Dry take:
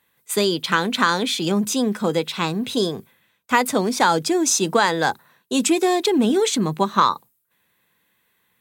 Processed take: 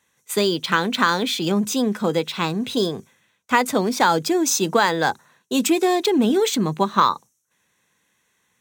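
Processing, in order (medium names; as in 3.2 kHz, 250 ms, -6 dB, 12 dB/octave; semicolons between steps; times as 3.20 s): decimation joined by straight lines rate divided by 2×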